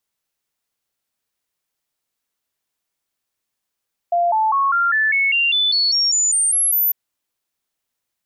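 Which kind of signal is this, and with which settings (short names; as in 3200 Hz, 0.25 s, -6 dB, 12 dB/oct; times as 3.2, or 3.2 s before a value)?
stepped sine 694 Hz up, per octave 3, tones 14, 0.20 s, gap 0.00 s -14 dBFS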